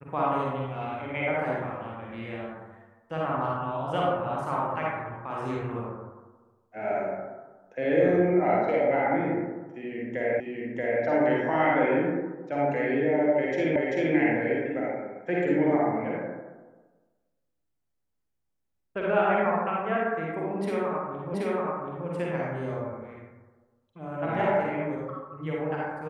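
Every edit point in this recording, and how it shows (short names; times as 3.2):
10.4 repeat of the last 0.63 s
13.76 repeat of the last 0.39 s
21.34 repeat of the last 0.73 s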